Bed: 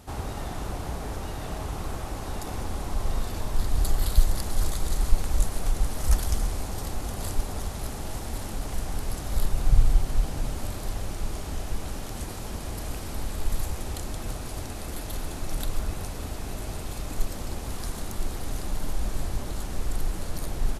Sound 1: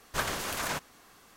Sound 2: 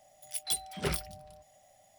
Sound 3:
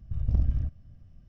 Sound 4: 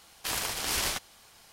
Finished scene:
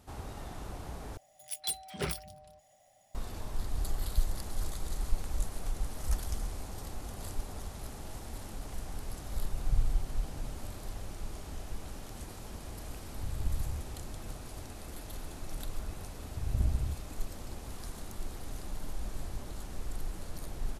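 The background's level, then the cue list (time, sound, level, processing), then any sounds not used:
bed -9.5 dB
1.17 replace with 2 -2.5 dB + spectral gate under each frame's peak -50 dB strong
13.12 add 3 -2 dB + compressor 2.5:1, threshold -34 dBFS
16.26 add 3 -5 dB
not used: 1, 4

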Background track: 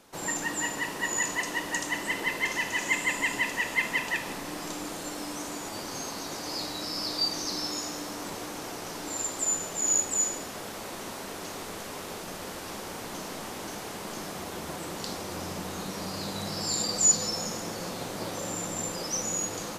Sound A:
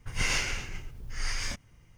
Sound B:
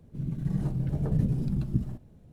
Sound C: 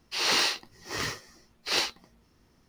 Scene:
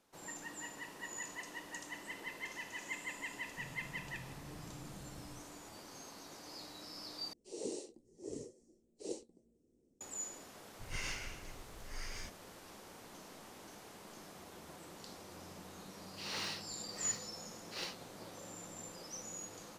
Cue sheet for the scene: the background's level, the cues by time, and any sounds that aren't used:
background track -16 dB
3.44 add B -12 dB + compressor, threshold -37 dBFS
7.33 replace with C -17 dB + EQ curve 120 Hz 0 dB, 180 Hz +6 dB, 290 Hz +13 dB, 480 Hz +13 dB, 780 Hz -7 dB, 1400 Hz -29 dB, 2400 Hz -20 dB, 4900 Hz -13 dB, 8000 Hz +11 dB, 15000 Hz -29 dB
10.74 add A -13 dB
16.05 add C -16.5 dB

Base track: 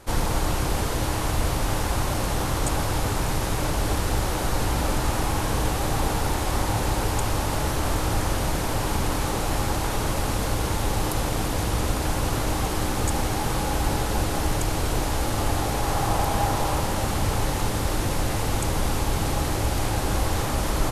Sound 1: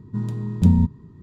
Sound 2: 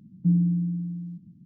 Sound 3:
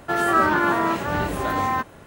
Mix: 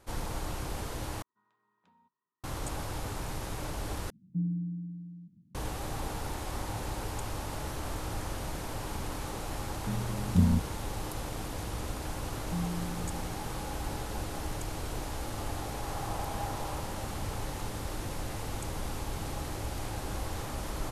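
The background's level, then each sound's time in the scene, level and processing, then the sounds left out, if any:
base track -12 dB
1.22 replace with 1 -14.5 dB + ladder band-pass 1500 Hz, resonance 30%
4.1 replace with 2 -10.5 dB
9.73 add 1 -8.5 dB
12.27 add 2 -13.5 dB
not used: 3

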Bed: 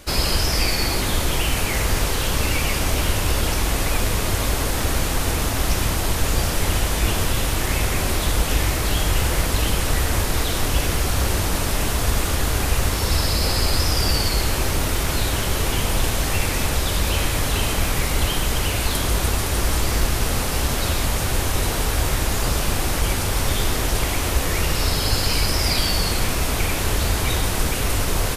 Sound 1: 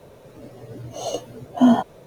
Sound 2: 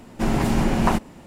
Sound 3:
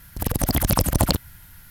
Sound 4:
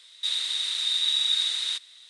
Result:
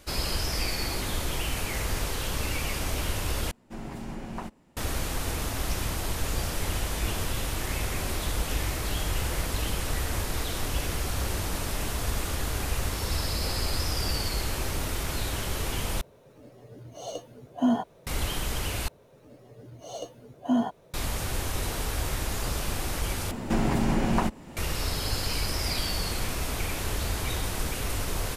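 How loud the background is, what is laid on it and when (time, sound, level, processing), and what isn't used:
bed -9 dB
3.51 replace with 2 -17 dB
16.01 replace with 1 -9 dB
18.88 replace with 1 -10 dB
23.31 replace with 2 -4.5 dB + three-band squash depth 70%
not used: 3, 4

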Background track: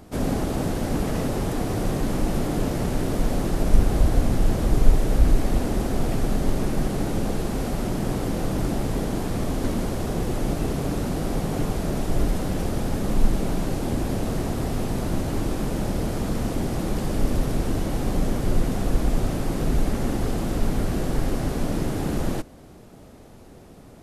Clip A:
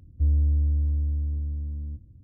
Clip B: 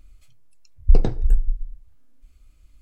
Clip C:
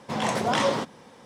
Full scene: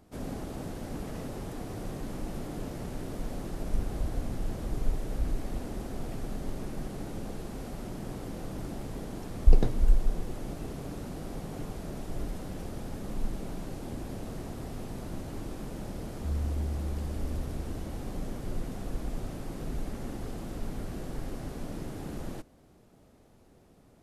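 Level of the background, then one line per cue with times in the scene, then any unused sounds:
background track -13 dB
8.58 add B -4.5 dB
16.04 add A -10.5 dB
not used: C

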